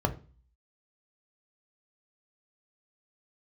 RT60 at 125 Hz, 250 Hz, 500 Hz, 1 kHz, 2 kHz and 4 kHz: 0.55, 0.45, 0.40, 0.35, 0.35, 0.35 seconds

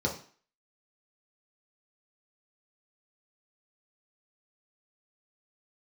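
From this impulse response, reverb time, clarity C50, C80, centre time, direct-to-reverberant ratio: 0.45 s, 8.5 dB, 13.5 dB, 21 ms, −2.0 dB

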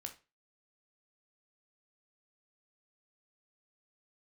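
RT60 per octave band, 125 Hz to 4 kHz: 0.35, 0.30, 0.30, 0.30, 0.30, 0.25 seconds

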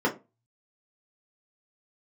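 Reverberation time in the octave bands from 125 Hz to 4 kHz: 0.70, 0.30, 0.30, 0.25, 0.20, 0.15 seconds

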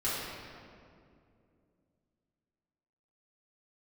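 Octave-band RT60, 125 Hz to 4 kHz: 3.3, 3.3, 2.8, 2.1, 1.8, 1.4 seconds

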